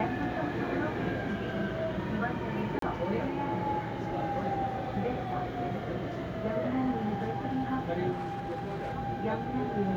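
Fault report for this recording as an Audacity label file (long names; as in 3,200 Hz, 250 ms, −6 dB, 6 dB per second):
2.790000	2.820000	drop-out 33 ms
8.110000	8.930000	clipping −32 dBFS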